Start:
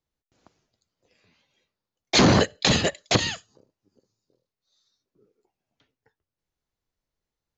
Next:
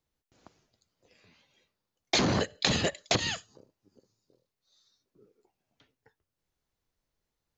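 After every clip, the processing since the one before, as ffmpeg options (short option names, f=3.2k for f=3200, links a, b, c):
-af "acompressor=threshold=-25dB:ratio=10,volume=2dB"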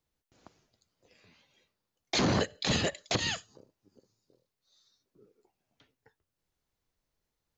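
-af "alimiter=limit=-17dB:level=0:latency=1:release=59"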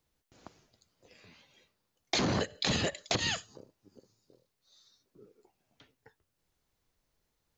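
-af "acompressor=threshold=-32dB:ratio=4,volume=4.5dB"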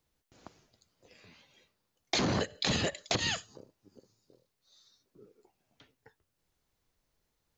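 -af anull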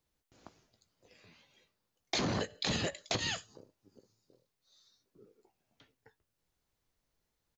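-filter_complex "[0:a]asplit=2[a][b];[b]adelay=18,volume=-13.5dB[c];[a][c]amix=inputs=2:normalize=0,volume=-3.5dB"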